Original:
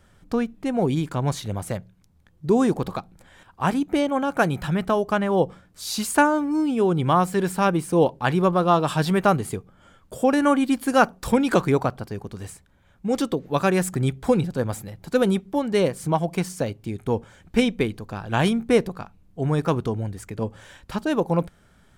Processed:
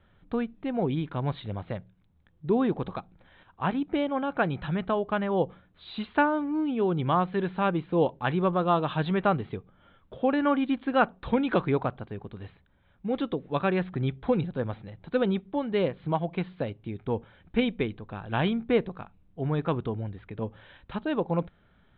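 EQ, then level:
Butterworth low-pass 3,900 Hz 96 dB per octave
−5.5 dB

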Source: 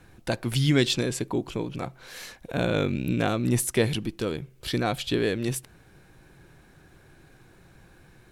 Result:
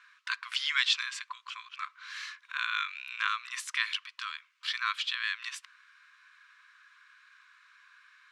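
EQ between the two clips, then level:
linear-phase brick-wall high-pass 990 Hz
high-frequency loss of the air 140 metres
+4.0 dB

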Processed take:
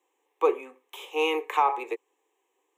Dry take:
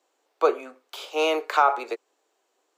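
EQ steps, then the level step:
phaser with its sweep stopped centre 950 Hz, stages 8
0.0 dB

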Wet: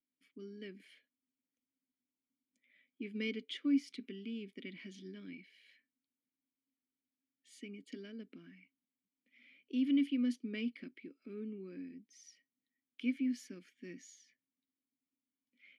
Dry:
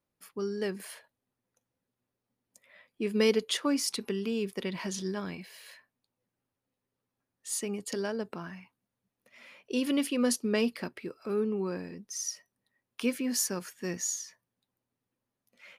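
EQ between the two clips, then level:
formant filter i
dynamic equaliser 1,000 Hz, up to +6 dB, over −59 dBFS, Q 1.2
0.0 dB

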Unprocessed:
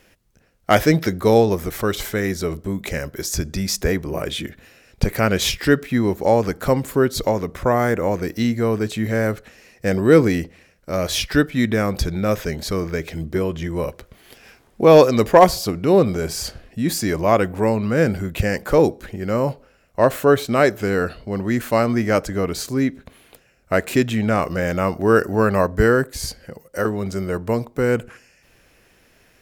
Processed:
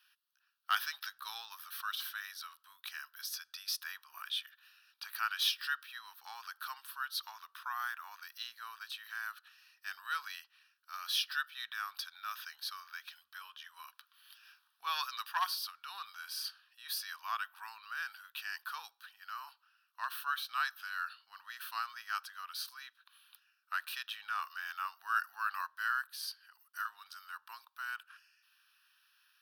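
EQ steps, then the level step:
inverse Chebyshev high-pass filter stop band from 370 Hz, stop band 60 dB
phaser with its sweep stopped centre 2,100 Hz, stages 6
−7.5 dB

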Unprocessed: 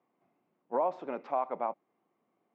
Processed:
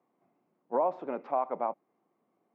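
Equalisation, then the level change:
high-pass filter 97 Hz
high-shelf EQ 2,500 Hz −10.5 dB
+2.5 dB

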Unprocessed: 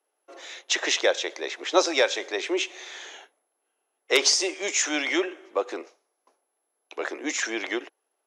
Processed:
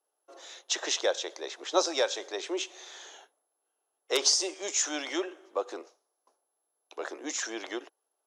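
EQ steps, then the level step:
low-shelf EQ 330 Hz −9.5 dB
parametric band 2,200 Hz −11 dB 0.89 octaves
−2.0 dB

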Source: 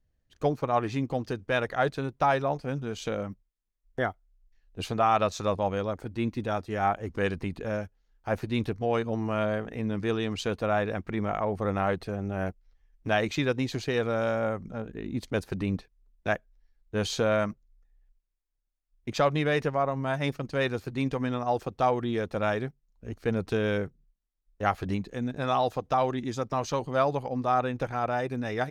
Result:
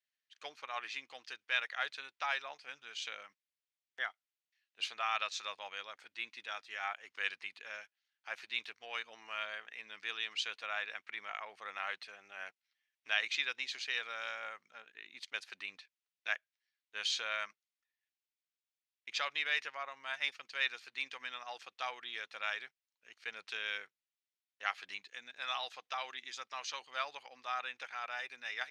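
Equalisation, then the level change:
four-pole ladder band-pass 3,200 Hz, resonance 20%
+11.5 dB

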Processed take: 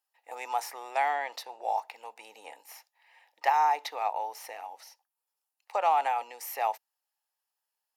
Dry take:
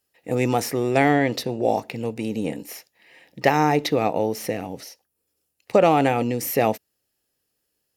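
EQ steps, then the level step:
four-pole ladder high-pass 790 Hz, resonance 65%
0.0 dB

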